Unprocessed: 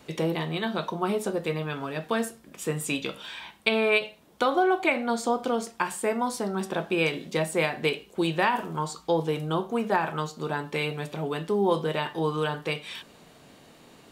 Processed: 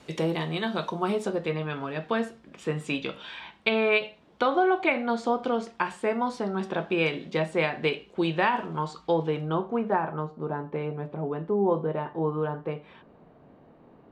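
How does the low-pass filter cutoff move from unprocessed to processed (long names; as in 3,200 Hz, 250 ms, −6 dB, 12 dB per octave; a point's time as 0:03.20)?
0:01.08 8,800 Hz
0:01.49 3,700 Hz
0:09.05 3,700 Hz
0:09.77 1,800 Hz
0:10.20 1,000 Hz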